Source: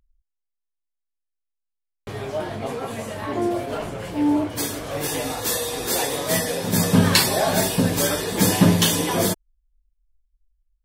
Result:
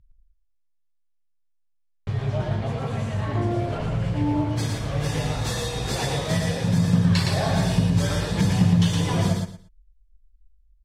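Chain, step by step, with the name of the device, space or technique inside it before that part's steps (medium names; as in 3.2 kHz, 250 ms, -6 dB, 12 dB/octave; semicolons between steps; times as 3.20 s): jukebox (low-pass 6 kHz 12 dB/octave; resonant low shelf 200 Hz +12 dB, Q 1.5; compression 3:1, threshold -16 dBFS, peak gain reduction 11.5 dB); feedback delay 115 ms, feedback 22%, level -3.5 dB; trim -3.5 dB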